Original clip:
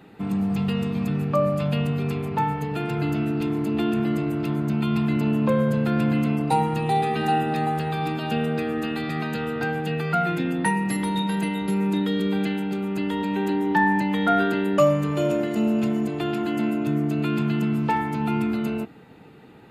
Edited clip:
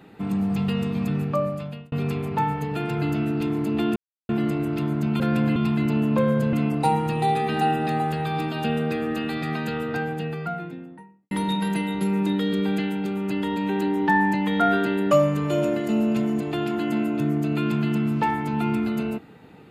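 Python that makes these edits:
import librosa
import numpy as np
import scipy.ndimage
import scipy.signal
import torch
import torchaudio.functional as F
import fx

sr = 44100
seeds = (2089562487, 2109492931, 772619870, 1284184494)

y = fx.studio_fade_out(x, sr, start_s=9.37, length_s=1.61)
y = fx.edit(y, sr, fx.fade_out_span(start_s=1.19, length_s=0.73),
    fx.insert_silence(at_s=3.96, length_s=0.33),
    fx.move(start_s=5.84, length_s=0.36, to_s=4.87), tone=tone)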